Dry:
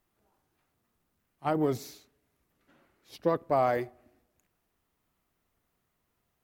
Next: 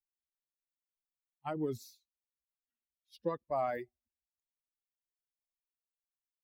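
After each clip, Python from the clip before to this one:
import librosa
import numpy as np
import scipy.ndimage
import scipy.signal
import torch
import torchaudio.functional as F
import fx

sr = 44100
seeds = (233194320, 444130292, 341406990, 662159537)

y = fx.bin_expand(x, sr, power=2.0)
y = y * 10.0 ** (-5.5 / 20.0)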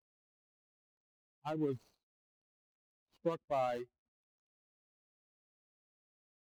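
y = scipy.signal.medfilt(x, 25)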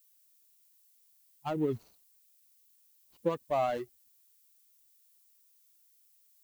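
y = fx.dmg_noise_colour(x, sr, seeds[0], colour='violet', level_db=-71.0)
y = y * 10.0 ** (5.0 / 20.0)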